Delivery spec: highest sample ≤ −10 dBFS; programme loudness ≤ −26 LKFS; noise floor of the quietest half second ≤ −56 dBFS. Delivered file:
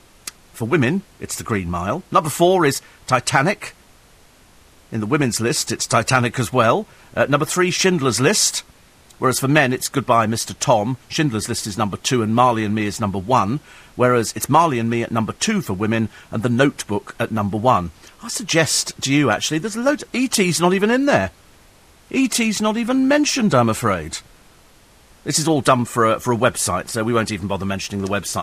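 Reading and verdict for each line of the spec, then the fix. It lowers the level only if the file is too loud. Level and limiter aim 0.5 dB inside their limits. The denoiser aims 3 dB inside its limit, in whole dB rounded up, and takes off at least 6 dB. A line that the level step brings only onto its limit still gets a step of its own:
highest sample −2.0 dBFS: out of spec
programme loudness −18.5 LKFS: out of spec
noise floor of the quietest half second −50 dBFS: out of spec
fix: level −8 dB
brickwall limiter −10.5 dBFS

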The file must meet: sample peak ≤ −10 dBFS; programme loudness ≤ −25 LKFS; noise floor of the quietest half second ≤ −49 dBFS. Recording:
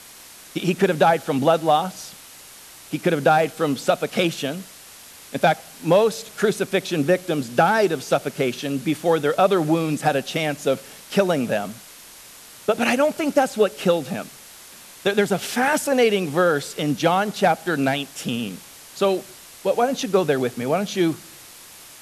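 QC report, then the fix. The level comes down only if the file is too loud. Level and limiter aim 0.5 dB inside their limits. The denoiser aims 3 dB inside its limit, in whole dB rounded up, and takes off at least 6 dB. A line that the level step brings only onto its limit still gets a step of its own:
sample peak −5.5 dBFS: out of spec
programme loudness −21.5 LKFS: out of spec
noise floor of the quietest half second −44 dBFS: out of spec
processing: broadband denoise 6 dB, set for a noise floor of −44 dBFS
level −4 dB
brickwall limiter −10.5 dBFS

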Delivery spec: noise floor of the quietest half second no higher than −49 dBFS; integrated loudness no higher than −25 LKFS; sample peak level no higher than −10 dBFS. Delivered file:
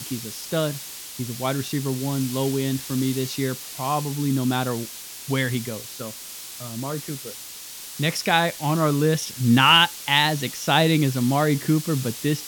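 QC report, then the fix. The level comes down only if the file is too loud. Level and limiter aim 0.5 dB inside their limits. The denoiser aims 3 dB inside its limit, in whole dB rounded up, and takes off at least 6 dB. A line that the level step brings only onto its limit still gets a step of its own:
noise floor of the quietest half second −38 dBFS: out of spec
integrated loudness −22.5 LKFS: out of spec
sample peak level −4.5 dBFS: out of spec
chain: broadband denoise 11 dB, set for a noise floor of −38 dBFS
level −3 dB
brickwall limiter −10.5 dBFS

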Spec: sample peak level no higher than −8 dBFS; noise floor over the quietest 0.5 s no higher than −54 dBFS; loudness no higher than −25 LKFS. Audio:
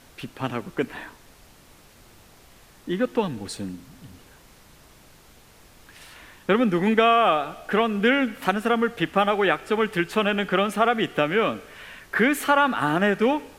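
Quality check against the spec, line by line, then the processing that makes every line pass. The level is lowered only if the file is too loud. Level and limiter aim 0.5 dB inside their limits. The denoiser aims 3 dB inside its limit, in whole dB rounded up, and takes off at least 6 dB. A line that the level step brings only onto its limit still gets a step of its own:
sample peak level −5.5 dBFS: out of spec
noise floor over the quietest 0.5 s −52 dBFS: out of spec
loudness −22.5 LKFS: out of spec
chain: level −3 dB

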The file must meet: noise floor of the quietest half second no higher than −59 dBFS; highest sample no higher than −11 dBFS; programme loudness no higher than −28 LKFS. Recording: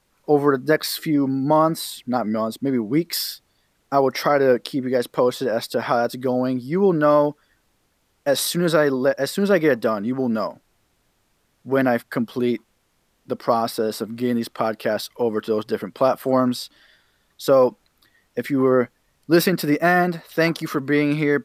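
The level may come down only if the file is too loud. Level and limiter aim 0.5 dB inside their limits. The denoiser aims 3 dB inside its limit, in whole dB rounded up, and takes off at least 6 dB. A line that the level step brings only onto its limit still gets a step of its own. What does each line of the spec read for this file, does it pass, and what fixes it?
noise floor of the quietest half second −66 dBFS: in spec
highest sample −5.5 dBFS: out of spec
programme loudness −21.0 LKFS: out of spec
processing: level −7.5 dB

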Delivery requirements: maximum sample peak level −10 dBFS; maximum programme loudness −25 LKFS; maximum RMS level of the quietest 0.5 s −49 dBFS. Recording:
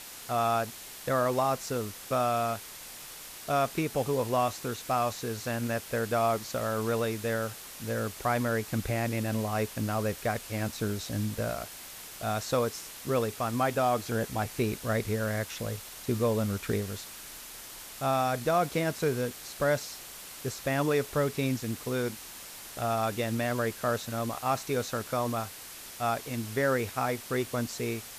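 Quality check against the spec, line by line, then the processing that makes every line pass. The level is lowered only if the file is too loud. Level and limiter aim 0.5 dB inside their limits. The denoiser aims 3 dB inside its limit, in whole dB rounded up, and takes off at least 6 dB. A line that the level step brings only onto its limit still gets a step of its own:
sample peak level −15.0 dBFS: in spec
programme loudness −30.5 LKFS: in spec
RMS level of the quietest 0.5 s −45 dBFS: out of spec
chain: broadband denoise 7 dB, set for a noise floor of −45 dBFS

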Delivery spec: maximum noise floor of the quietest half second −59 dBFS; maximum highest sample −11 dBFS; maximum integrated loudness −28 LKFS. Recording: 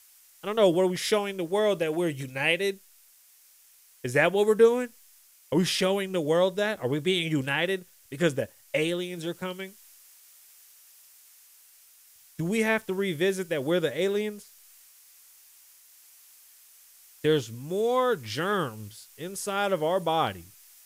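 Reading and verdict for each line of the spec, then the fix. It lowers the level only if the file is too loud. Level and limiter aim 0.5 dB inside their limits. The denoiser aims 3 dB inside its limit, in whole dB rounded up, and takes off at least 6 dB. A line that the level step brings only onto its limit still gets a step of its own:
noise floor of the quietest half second −58 dBFS: out of spec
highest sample −8.0 dBFS: out of spec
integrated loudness −26.5 LKFS: out of spec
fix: level −2 dB
brickwall limiter −11.5 dBFS

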